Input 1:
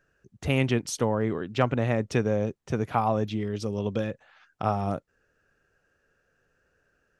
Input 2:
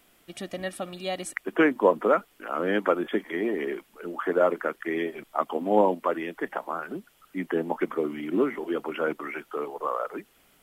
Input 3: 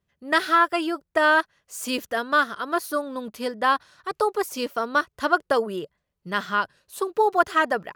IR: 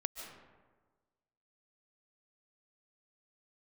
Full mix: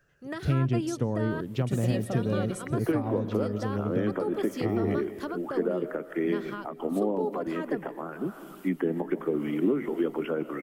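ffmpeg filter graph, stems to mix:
-filter_complex "[0:a]volume=-1.5dB,asplit=2[a][b];[b]volume=-14dB[c];[1:a]acompressor=threshold=-24dB:ratio=6,adelay=1300,volume=1dB,asplit=2[d][e];[e]volume=-5dB[f];[2:a]alimiter=limit=-14dB:level=0:latency=1:release=65,volume=-3.5dB[g];[a][d]amix=inputs=2:normalize=0,crystalizer=i=0.5:c=0,alimiter=limit=-17dB:level=0:latency=1:release=263,volume=0dB[h];[3:a]atrim=start_sample=2205[i];[c][f]amix=inputs=2:normalize=0[j];[j][i]afir=irnorm=-1:irlink=0[k];[g][h][k]amix=inputs=3:normalize=0,equalizer=f=140:t=o:w=0.39:g=6.5,acrossover=split=470[l][m];[m]acompressor=threshold=-42dB:ratio=3[n];[l][n]amix=inputs=2:normalize=0"

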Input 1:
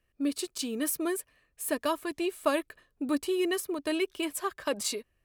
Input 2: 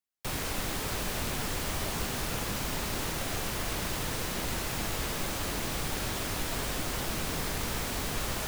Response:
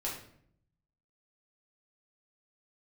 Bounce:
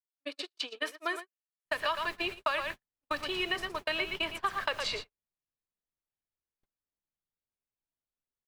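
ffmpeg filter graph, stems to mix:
-filter_complex "[0:a]highpass=f=280:w=0.5412,highpass=f=280:w=1.3066,acrossover=split=570 4600:gain=0.0708 1 0.0708[a][b][c];[a][b][c]amix=inputs=3:normalize=0,acontrast=49,volume=2.5dB,asplit=3[d][e][f];[e]volume=-19dB[g];[f]volume=-7dB[h];[1:a]acrossover=split=3800[i][j];[j]acompressor=threshold=-45dB:ratio=4:attack=1:release=60[k];[i][k]amix=inputs=2:normalize=0,adelay=1400,volume=-12.5dB,asplit=2[l][m];[m]volume=-9.5dB[n];[2:a]atrim=start_sample=2205[o];[g][n]amix=inputs=2:normalize=0[p];[p][o]afir=irnorm=-1:irlink=0[q];[h]aecho=0:1:114:1[r];[d][l][q][r]amix=inputs=4:normalize=0,agate=range=-58dB:threshold=-32dB:ratio=16:detection=peak,acrossover=split=1200|5100[s][t][u];[s]acompressor=threshold=-36dB:ratio=4[v];[t]acompressor=threshold=-31dB:ratio=4[w];[u]acompressor=threshold=-52dB:ratio=4[x];[v][w][x]amix=inputs=3:normalize=0"

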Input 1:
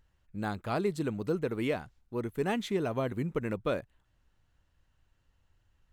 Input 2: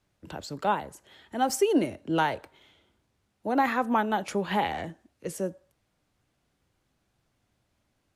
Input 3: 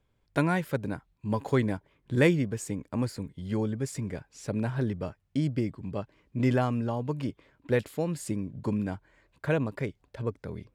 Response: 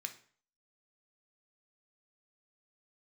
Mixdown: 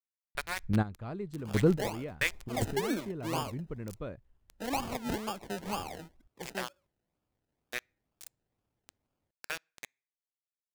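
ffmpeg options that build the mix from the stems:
-filter_complex "[0:a]aemphasis=mode=reproduction:type=bsi,adelay=350,volume=3dB[a];[1:a]acrusher=samples=31:mix=1:aa=0.000001:lfo=1:lforange=18.6:lforate=2.1,adelay=1150,volume=-9.5dB[b];[2:a]dynaudnorm=f=180:g=3:m=7dB,highpass=1.5k,aeval=exprs='val(0)*gte(abs(val(0)),0.0562)':c=same,volume=-5.5dB,asplit=3[c][d][e];[d]volume=-23.5dB[f];[e]apad=whole_len=276689[g];[a][g]sidechaingate=range=-15dB:threshold=-54dB:ratio=16:detection=peak[h];[3:a]atrim=start_sample=2205[i];[f][i]afir=irnorm=-1:irlink=0[j];[h][b][c][j]amix=inputs=4:normalize=0"

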